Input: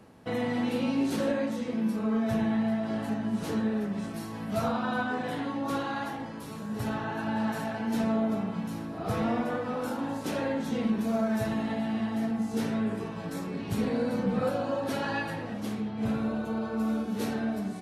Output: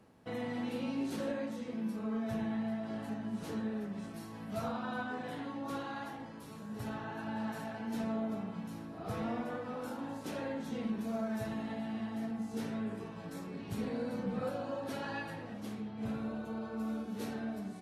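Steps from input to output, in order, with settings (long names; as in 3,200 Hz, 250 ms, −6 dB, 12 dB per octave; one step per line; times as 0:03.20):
level −8.5 dB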